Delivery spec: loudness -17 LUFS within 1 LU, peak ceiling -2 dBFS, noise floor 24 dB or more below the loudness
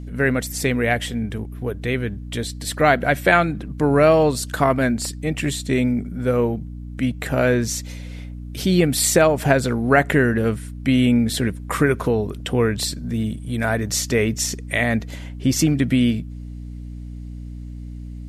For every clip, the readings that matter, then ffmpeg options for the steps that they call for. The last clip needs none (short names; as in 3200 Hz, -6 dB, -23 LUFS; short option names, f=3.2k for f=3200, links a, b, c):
hum 60 Hz; harmonics up to 300 Hz; hum level -30 dBFS; loudness -20.5 LUFS; peak -1.0 dBFS; loudness target -17.0 LUFS
-> -af "bandreject=f=60:t=h:w=4,bandreject=f=120:t=h:w=4,bandreject=f=180:t=h:w=4,bandreject=f=240:t=h:w=4,bandreject=f=300:t=h:w=4"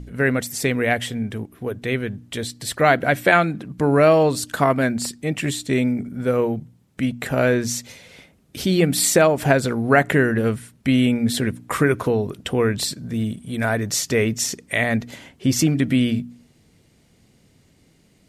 hum none; loudness -20.5 LUFS; peak -1.0 dBFS; loudness target -17.0 LUFS
-> -af "volume=3.5dB,alimiter=limit=-2dB:level=0:latency=1"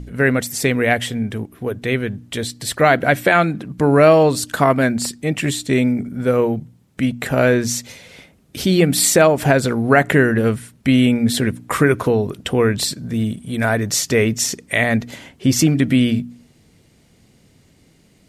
loudness -17.5 LUFS; peak -2.0 dBFS; noise floor -54 dBFS